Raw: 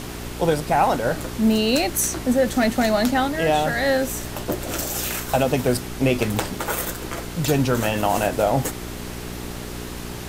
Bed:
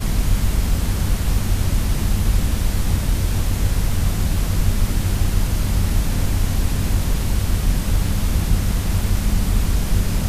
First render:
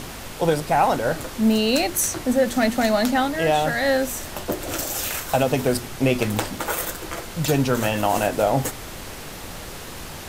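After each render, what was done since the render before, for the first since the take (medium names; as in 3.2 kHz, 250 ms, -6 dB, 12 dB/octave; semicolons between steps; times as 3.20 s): de-hum 60 Hz, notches 7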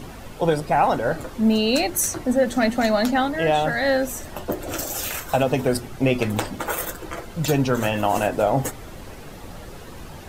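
noise reduction 10 dB, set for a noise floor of -36 dBFS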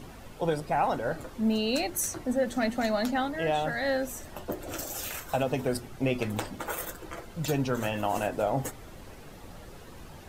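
trim -8 dB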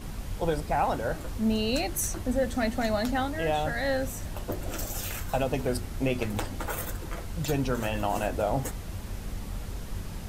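add bed -18 dB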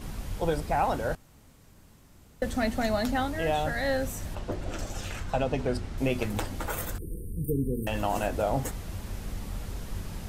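1.15–2.42 s: room tone; 4.35–5.98 s: distance through air 73 m; 6.98–7.87 s: brick-wall FIR band-stop 500–8400 Hz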